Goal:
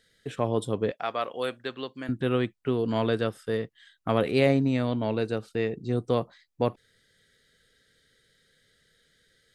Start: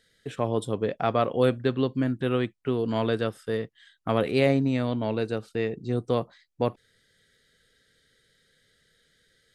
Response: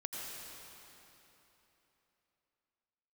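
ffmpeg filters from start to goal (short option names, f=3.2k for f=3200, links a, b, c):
-filter_complex "[0:a]asettb=1/sr,asplit=3[a][b][c];[a]atrim=end=0.914[d];[b]atrim=start=0.91:end=2.09,asetpts=PTS-STARTPTS,afade=t=in:d=0.004:c=qsin,afade=t=out:st=1.176:d=0.004:c=qsin,highpass=f=1.2k:p=1[e];[c]atrim=start=2.086[f];[d][e]acrossfade=d=0.004:c1=hsin:c2=qsin[g];[g][f]acrossfade=d=0.004:c1=qsin:c2=hsin"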